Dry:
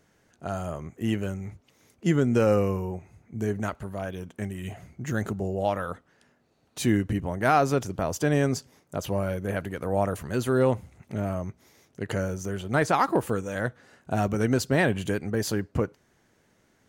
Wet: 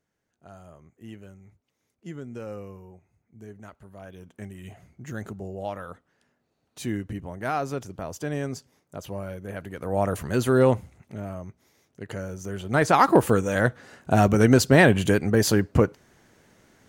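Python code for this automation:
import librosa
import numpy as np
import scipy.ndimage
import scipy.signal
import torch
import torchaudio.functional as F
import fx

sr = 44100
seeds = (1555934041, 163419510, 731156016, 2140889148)

y = fx.gain(x, sr, db=fx.line((3.61, -15.5), (4.36, -6.5), (9.53, -6.5), (10.18, 3.5), (10.74, 3.5), (11.16, -5.5), (12.23, -5.5), (13.14, 7.0)))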